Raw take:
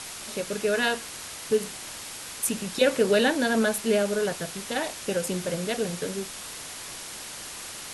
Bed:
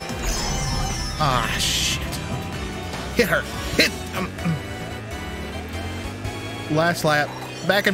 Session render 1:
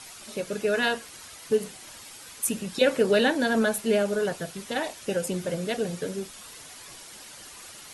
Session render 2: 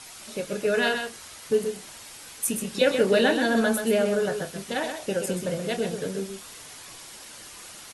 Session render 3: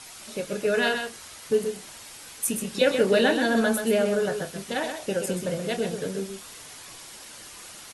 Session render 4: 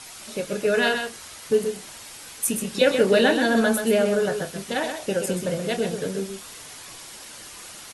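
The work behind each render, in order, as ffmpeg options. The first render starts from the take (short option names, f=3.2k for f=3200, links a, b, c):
-af "afftdn=nr=9:nf=-39"
-filter_complex "[0:a]asplit=2[a][b];[b]adelay=26,volume=-11dB[c];[a][c]amix=inputs=2:normalize=0,aecho=1:1:129:0.447"
-af anull
-af "volume=2.5dB"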